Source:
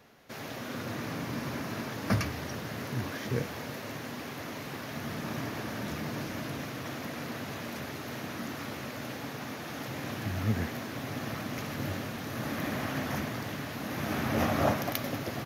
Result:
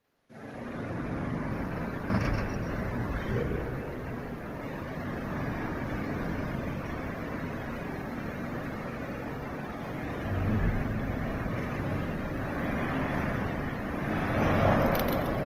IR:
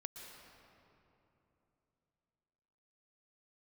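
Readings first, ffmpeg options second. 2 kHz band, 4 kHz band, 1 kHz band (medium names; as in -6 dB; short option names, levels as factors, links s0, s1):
+1.5 dB, -6.5 dB, +2.5 dB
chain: -filter_complex "[0:a]asplit=6[s0][s1][s2][s3][s4][s5];[s1]adelay=132,afreqshift=-63,volume=0.668[s6];[s2]adelay=264,afreqshift=-126,volume=0.275[s7];[s3]adelay=396,afreqshift=-189,volume=0.112[s8];[s4]adelay=528,afreqshift=-252,volume=0.0462[s9];[s5]adelay=660,afreqshift=-315,volume=0.0188[s10];[s0][s6][s7][s8][s9][s10]amix=inputs=6:normalize=0,asplit=2[s11][s12];[1:a]atrim=start_sample=2205,adelay=42[s13];[s12][s13]afir=irnorm=-1:irlink=0,volume=2.11[s14];[s11][s14]amix=inputs=2:normalize=0,afftdn=nr=15:nf=-35,volume=0.708" -ar 48000 -c:a libopus -b:a 24k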